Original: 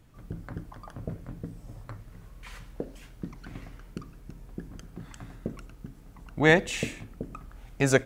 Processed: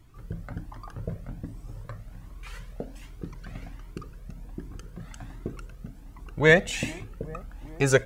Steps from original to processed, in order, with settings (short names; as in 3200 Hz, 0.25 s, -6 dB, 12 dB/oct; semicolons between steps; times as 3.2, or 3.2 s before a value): dark delay 0.412 s, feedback 73%, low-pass 790 Hz, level -19 dB; cascading flanger rising 1.3 Hz; gain +5.5 dB